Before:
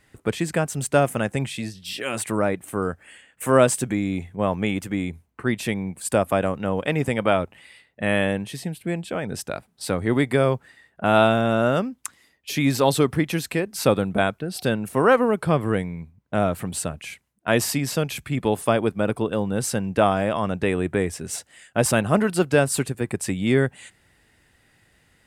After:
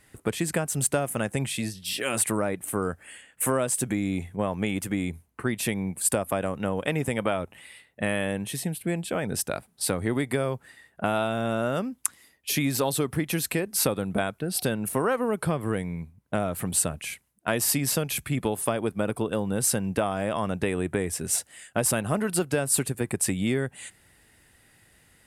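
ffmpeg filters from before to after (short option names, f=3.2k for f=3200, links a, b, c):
-filter_complex "[0:a]asettb=1/sr,asplit=3[a][b][c];[a]atrim=end=6.564[d];[b]atrim=start=6.56:end=8.74,asetpts=PTS-STARTPTS,afade=t=in:d=0.004:c=qsin,afade=t=out:st=2.176:d=0.004:c=qsin,bandreject=f=4.7k:w=12[e];[c]atrim=start=8.736[f];[d][e]acrossfade=d=0.004:c1=hsin:c2=qsin[g];[g][f]acrossfade=d=0.004:c1=qsin:c2=hsin,acompressor=threshold=-22dB:ratio=6,equalizer=f=11k:t=o:w=0.81:g=10"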